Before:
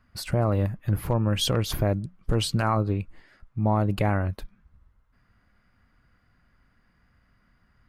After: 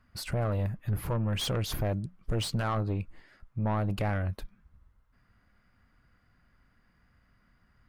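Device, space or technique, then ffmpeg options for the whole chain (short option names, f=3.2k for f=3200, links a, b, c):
saturation between pre-emphasis and de-emphasis: -af "highshelf=f=3.9k:g=11,asoftclip=type=tanh:threshold=-21dB,highshelf=f=3.9k:g=-11,volume=-2dB"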